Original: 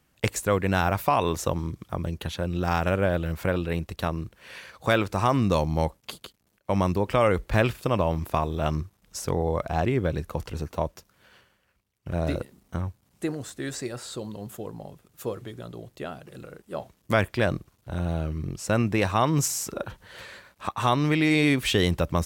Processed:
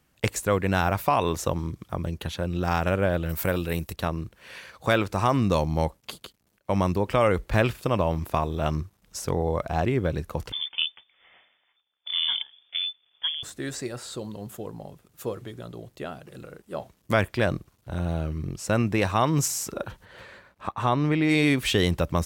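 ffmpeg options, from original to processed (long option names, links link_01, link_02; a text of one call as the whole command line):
ffmpeg -i in.wav -filter_complex "[0:a]asettb=1/sr,asplit=3[link_01][link_02][link_03];[link_01]atrim=end=3.294[link_04];[link_02]atrim=start=3.29:end=3.93,asetpts=PTS-STARTPTS,afade=type=in:duration=0.004:curve=qsin,afade=type=out:start_time=0.636:duration=0.004:curve=qsin,aemphasis=mode=production:type=50fm[link_05];[link_03]atrim=start=3.926[link_06];[link_04][link_05]acrossfade=duration=0.004:curve1=hsin:curve2=qsin[link_07];[link_07][link_06]acrossfade=duration=0.004:curve1=qsin:curve2=hsin,asettb=1/sr,asplit=3[link_08][link_09][link_10];[link_08]atrim=end=10.524[link_11];[link_09]atrim=start=10.52:end=13.43,asetpts=PTS-STARTPTS,afade=type=in:duration=0.004:curve=qsin,afade=type=out:start_time=2.906:duration=0.004:curve=qsin,lowpass=frequency=3100:width_type=q:width=0.5098,lowpass=frequency=3100:width_type=q:width=0.6013,lowpass=frequency=3100:width_type=q:width=0.9,lowpass=frequency=3100:width_type=q:width=2.563,afreqshift=-3600[link_12];[link_10]atrim=start=13.426[link_13];[link_11][link_12]acrossfade=duration=0.004:curve1=hsin:curve2=qsin[link_14];[link_14][link_13]acrossfade=duration=0.004:curve1=qsin:curve2=hsin,asplit=3[link_15][link_16][link_17];[link_15]afade=type=out:start_time=20.04:duration=0.02[link_18];[link_16]highshelf=frequency=3000:gain=-11.5,afade=type=in:start_time=20.04:duration=0.02,afade=type=out:start_time=21.28:duration=0.02[link_19];[link_17]afade=type=in:start_time=21.28:duration=0.02[link_20];[link_18][link_19][link_20]amix=inputs=3:normalize=0" out.wav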